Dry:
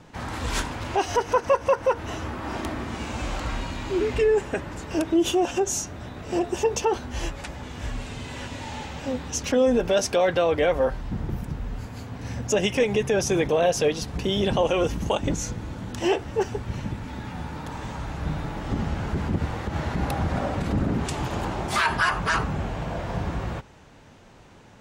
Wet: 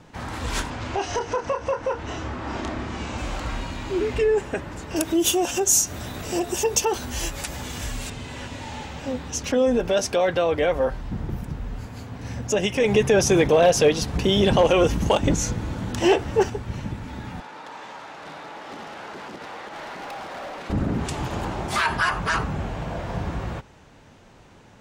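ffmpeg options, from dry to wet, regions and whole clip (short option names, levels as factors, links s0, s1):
-filter_complex "[0:a]asettb=1/sr,asplit=3[s0][s1][s2];[s0]atrim=end=0.704[s3];[s1]atrim=start=0.7:end=3.18,asetpts=PTS-STARTPTS,afade=t=in:d=0.004:c=qsin,afade=t=out:st=2.476:d=0.004:c=qsin,lowpass=f=7900:w=0.5412,lowpass=f=7900:w=1.3066,acompressor=threshold=0.0891:ratio=3:attack=3.2:release=140:knee=1:detection=peak,asplit=2[s4][s5];[s5]adelay=28,volume=0.447[s6];[s4][s6]amix=inputs=2:normalize=0,atrim=end_sample=109368[s7];[s2]atrim=start=3.176[s8];[s3][s7]acrossfade=d=0.004:c1=hsin:c2=qsin[s9];[s9][s8]acrossfade=d=0.004:c1=qsin:c2=hsin,asettb=1/sr,asplit=3[s10][s11][s12];[s10]atrim=end=4.964[s13];[s11]atrim=start=4.96:end=8.1,asetpts=PTS-STARTPTS,afade=t=in:d=0.004:c=qsin,afade=t=out:st=3.136:d=0.004:c=qsin,aemphasis=mode=production:type=75fm,acompressor=mode=upward:threshold=0.0562:ratio=2.5:attack=3.2:release=140:knee=2.83:detection=peak[s14];[s12]atrim=start=8.096[s15];[s13][s14]acrossfade=d=0.004:c1=hsin:c2=qsin[s16];[s16][s15]acrossfade=d=0.004:c1=qsin:c2=hsin,asettb=1/sr,asplit=3[s17][s18][s19];[s17]atrim=end=12.844[s20];[s18]atrim=start=12.84:end=16.5,asetpts=PTS-STARTPTS,afade=t=in:d=0.004:c=qsin,afade=t=out:st=3.656:d=0.004:c=qsin,asoftclip=type=hard:threshold=0.2,acontrast=27[s21];[s19]atrim=start=16.496[s22];[s20][s21]acrossfade=d=0.004:c1=hsin:c2=qsin[s23];[s23][s22]acrossfade=d=0.004:c1=qsin:c2=hsin,asettb=1/sr,asplit=3[s24][s25][s26];[s24]atrim=end=17.404[s27];[s25]atrim=start=17.4:end=20.7,asetpts=PTS-STARTPTS,afade=t=in:d=0.004:c=qsin,afade=t=out:st=3.296:d=0.004:c=qsin,acrusher=bits=5:mode=log:mix=0:aa=0.000001,highpass=500,lowpass=5400,asoftclip=type=hard:threshold=0.0251[s28];[s26]atrim=start=20.696[s29];[s27][s28]acrossfade=d=0.004:c1=hsin:c2=qsin[s30];[s30][s29]acrossfade=d=0.004:c1=qsin:c2=hsin"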